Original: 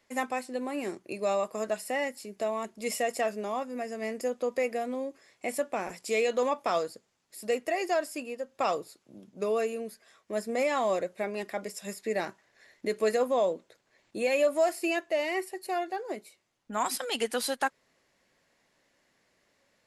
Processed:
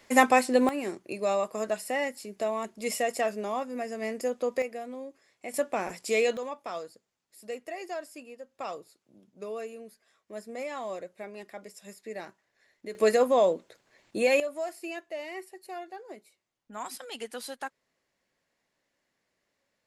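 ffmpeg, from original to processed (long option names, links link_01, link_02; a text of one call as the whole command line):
ffmpeg -i in.wav -af "asetnsamples=nb_out_samples=441:pad=0,asendcmd='0.69 volume volume 1dB;4.62 volume volume -6dB;5.54 volume volume 2dB;6.37 volume volume -8.5dB;12.95 volume volume 4dB;14.4 volume volume -8.5dB',volume=11.5dB" out.wav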